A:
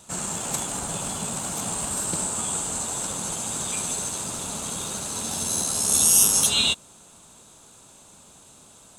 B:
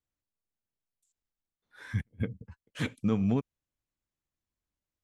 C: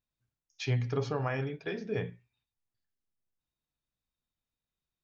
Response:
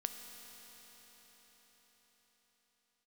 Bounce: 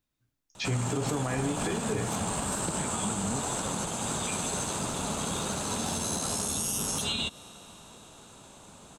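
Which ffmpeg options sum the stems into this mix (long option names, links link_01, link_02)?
-filter_complex "[0:a]highshelf=frequency=4600:gain=-11,adelay=550,volume=2.5dB,asplit=2[link_01][link_02];[link_02]volume=-19dB[link_03];[1:a]alimiter=level_in=0.5dB:limit=-24dB:level=0:latency=1,volume=-0.5dB,volume=-0.5dB[link_04];[2:a]equalizer=frequency=290:width=3.6:gain=8.5,volume=2.5dB,asplit=2[link_05][link_06];[link_06]volume=-5dB[link_07];[3:a]atrim=start_sample=2205[link_08];[link_03][link_07]amix=inputs=2:normalize=0[link_09];[link_09][link_08]afir=irnorm=-1:irlink=0[link_10];[link_01][link_04][link_05][link_10]amix=inputs=4:normalize=0,acrossover=split=340[link_11][link_12];[link_12]acompressor=threshold=-23dB:ratio=6[link_13];[link_11][link_13]amix=inputs=2:normalize=0,alimiter=limit=-20.5dB:level=0:latency=1:release=117"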